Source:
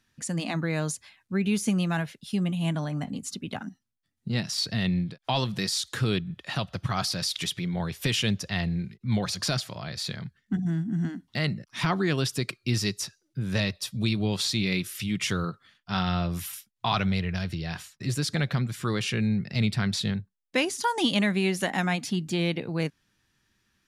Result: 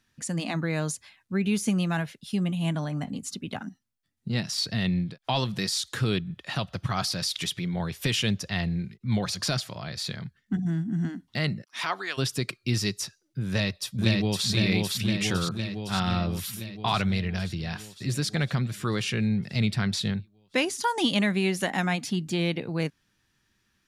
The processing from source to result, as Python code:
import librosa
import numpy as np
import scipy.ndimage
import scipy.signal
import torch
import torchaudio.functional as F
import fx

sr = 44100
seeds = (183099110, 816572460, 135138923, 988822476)

y = fx.highpass(x, sr, hz=fx.line((11.61, 340.0), (12.17, 1000.0)), slope=12, at=(11.61, 12.17), fade=0.02)
y = fx.echo_throw(y, sr, start_s=13.47, length_s=0.99, ms=510, feedback_pct=70, wet_db=-2.0)